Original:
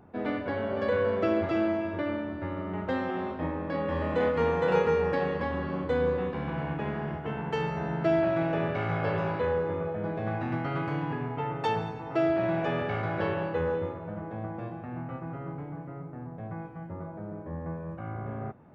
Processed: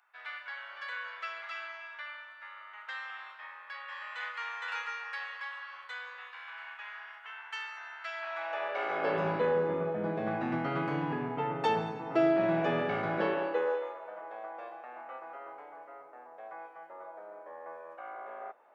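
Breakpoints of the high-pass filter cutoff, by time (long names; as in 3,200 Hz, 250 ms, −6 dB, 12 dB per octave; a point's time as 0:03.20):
high-pass filter 24 dB per octave
0:08.13 1,300 Hz
0:08.69 610 Hz
0:09.27 160 Hz
0:13.12 160 Hz
0:13.87 560 Hz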